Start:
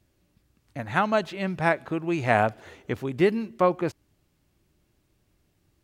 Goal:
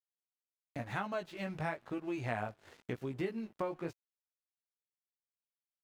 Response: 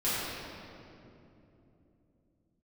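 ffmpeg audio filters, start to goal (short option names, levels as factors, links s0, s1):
-af "flanger=delay=15:depth=4.9:speed=0.96,aeval=exprs='sgn(val(0))*max(abs(val(0))-0.00266,0)':c=same,acompressor=threshold=0.00631:ratio=3,volume=1.58"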